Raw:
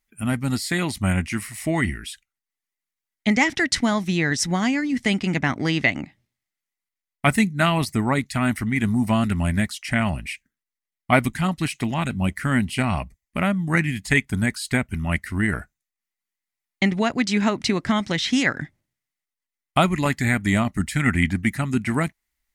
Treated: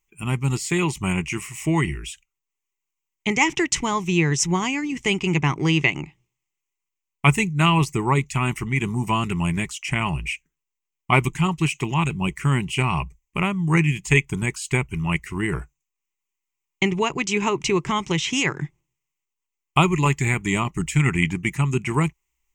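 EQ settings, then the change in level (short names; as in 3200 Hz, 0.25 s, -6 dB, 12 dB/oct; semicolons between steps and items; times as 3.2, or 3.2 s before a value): ripple EQ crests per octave 0.72, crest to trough 14 dB; -1.0 dB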